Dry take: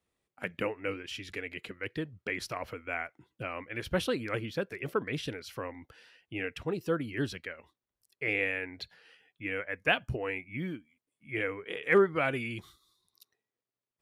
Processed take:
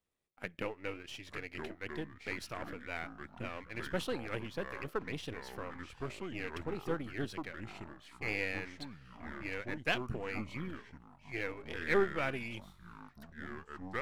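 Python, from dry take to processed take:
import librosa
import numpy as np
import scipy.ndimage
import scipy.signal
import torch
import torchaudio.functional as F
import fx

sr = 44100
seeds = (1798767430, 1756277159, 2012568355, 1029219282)

y = np.where(x < 0.0, 10.0 ** (-7.0 / 20.0) * x, x)
y = fx.echo_pitch(y, sr, ms=764, semitones=-5, count=3, db_per_echo=-6.0)
y = y * librosa.db_to_amplitude(-4.0)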